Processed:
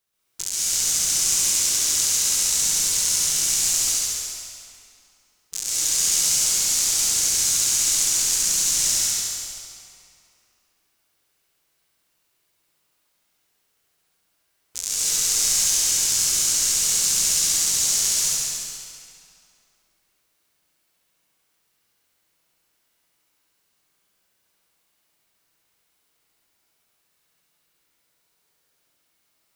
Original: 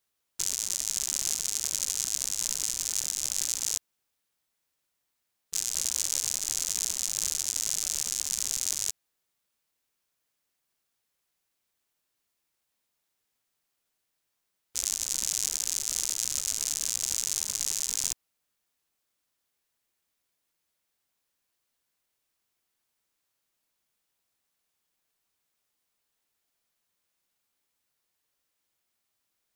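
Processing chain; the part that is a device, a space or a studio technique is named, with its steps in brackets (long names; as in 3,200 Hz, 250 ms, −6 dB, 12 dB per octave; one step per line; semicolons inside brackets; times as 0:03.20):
tunnel (flutter between parallel walls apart 11.8 metres, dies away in 1.2 s; convolution reverb RT60 2.5 s, pre-delay 117 ms, DRR −8.5 dB)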